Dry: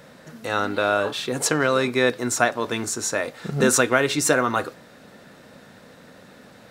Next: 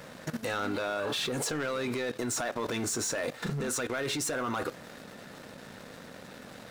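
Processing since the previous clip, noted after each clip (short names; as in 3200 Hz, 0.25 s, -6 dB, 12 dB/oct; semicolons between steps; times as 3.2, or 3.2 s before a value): compressor 8:1, threshold -25 dBFS, peak gain reduction 12.5 dB; sample leveller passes 3; level quantiser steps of 15 dB; gain -2 dB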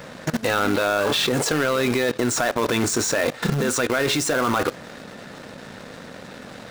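bell 14000 Hz -8.5 dB 0.84 oct; in parallel at -7.5 dB: bit-crush 5-bit; on the sum: gain +8 dB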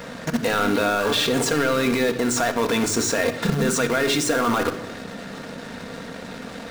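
in parallel at 0 dB: limiter -22.5 dBFS, peak gain reduction 11 dB; on the sum: reverb RT60 1.0 s, pre-delay 4 ms, DRR 5.5 dB; gain -4 dB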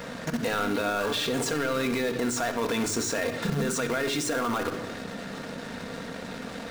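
limiter -17.5 dBFS, peak gain reduction 7.5 dB; gain -2 dB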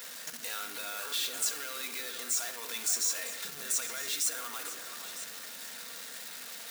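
zero-crossing step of -35.5 dBFS; differentiator; echo with dull and thin repeats by turns 0.477 s, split 2200 Hz, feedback 52%, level -8 dB; gain +1 dB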